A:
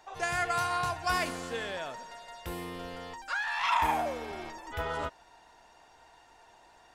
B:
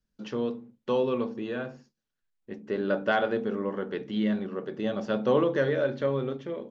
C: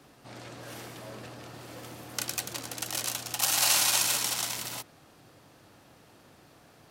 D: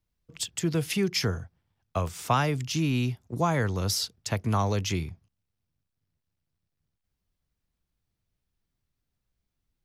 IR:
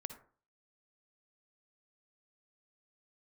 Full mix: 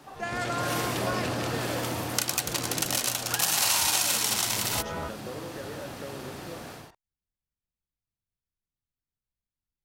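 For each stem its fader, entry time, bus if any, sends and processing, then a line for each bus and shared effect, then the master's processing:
-0.5 dB, 0.00 s, no send, high shelf 3300 Hz -9.5 dB
-8.0 dB, 0.00 s, no send, compressor, threshold -30 dBFS, peak gain reduction 11 dB
+3.0 dB, 0.00 s, no send, AGC gain up to 13 dB
-13.0 dB, 0.00 s, no send, dry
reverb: off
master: compressor 2.5:1, threshold -26 dBFS, peak gain reduction 10.5 dB

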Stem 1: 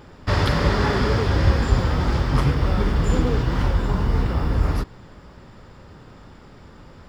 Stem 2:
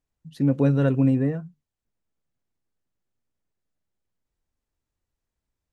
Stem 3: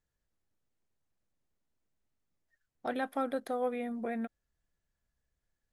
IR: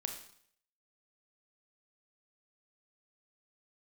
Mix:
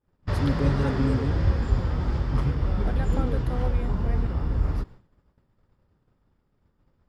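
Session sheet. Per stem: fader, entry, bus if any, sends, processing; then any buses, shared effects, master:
-10.0 dB, 0.00 s, no send, tilt -1.5 dB/oct
-9.0 dB, 0.00 s, no send, tone controls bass +5 dB, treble +15 dB
-3.0 dB, 0.00 s, no send, dry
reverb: off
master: expander -37 dBFS

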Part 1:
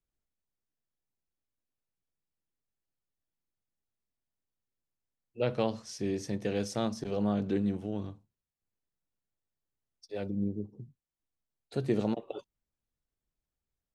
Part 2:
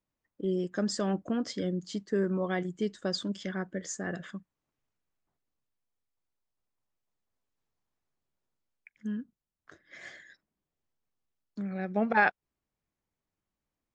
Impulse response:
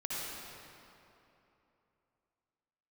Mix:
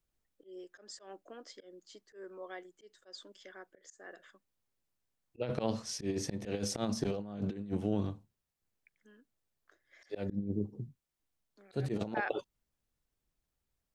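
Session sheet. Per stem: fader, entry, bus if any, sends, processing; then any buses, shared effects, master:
+1.5 dB, 0.00 s, no send, dry
-14.5 dB, 0.00 s, no send, HPF 360 Hz 24 dB/oct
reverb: off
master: auto swell 0.139 s; negative-ratio compressor -33 dBFS, ratio -0.5

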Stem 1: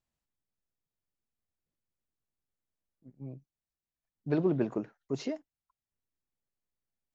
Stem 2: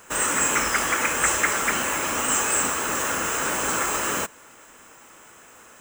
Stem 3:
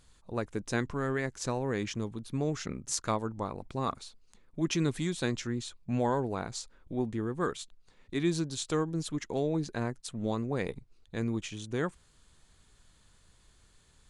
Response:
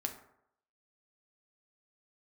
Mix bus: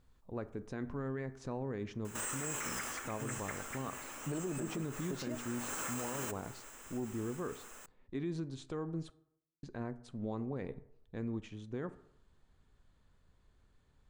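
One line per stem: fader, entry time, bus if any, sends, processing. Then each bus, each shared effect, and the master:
+0.5 dB, 0.00 s, bus A, no send, dry
-7.0 dB, 2.05 s, bus A, send -19.5 dB, auto duck -23 dB, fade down 0.25 s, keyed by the first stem
-7.5 dB, 0.00 s, muted 9.1–9.63, no bus, send -7 dB, LPF 1100 Hz 6 dB/oct
bus A: 0.0 dB, high shelf 5500 Hz +5.5 dB; compressor, threshold -33 dBFS, peak gain reduction 10.5 dB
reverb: on, RT60 0.75 s, pre-delay 4 ms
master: limiter -29.5 dBFS, peak gain reduction 10 dB

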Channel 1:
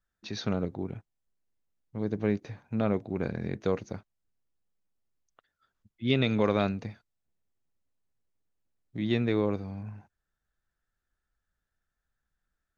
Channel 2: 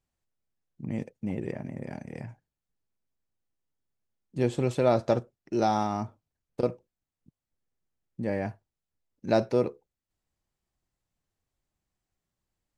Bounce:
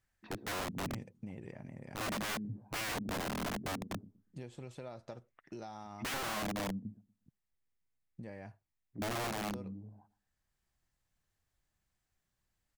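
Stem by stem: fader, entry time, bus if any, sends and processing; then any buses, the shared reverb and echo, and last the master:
6.14 s -3.5 dB -> 6.41 s -12 dB, 0.00 s, no send, echo send -19 dB, bell 510 Hz -4.5 dB 0.51 oct; notch 1400 Hz; envelope low-pass 230–2200 Hz down, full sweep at -31.5 dBFS
+2.0 dB, 0.00 s, no send, no echo send, bell 350 Hz -5.5 dB 2.1 oct; compressor 12:1, threshold -38 dBFS, peak gain reduction 17 dB; auto duck -7 dB, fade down 1.80 s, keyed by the first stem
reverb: off
echo: feedback echo 0.119 s, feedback 22%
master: wrapped overs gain 29.5 dB; limiter -32.5 dBFS, peak gain reduction 3 dB

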